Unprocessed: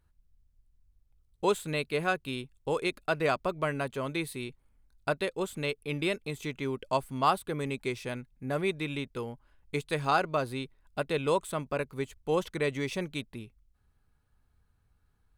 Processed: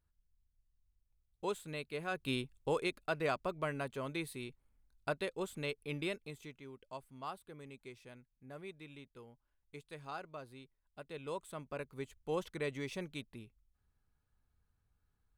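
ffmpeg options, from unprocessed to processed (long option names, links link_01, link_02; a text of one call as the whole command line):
ffmpeg -i in.wav -af "volume=10dB,afade=type=in:start_time=2.1:duration=0.21:silence=0.281838,afade=type=out:start_time=2.31:duration=0.65:silence=0.446684,afade=type=out:start_time=5.94:duration=0.68:silence=0.266073,afade=type=in:start_time=10.99:duration=1.18:silence=0.316228" out.wav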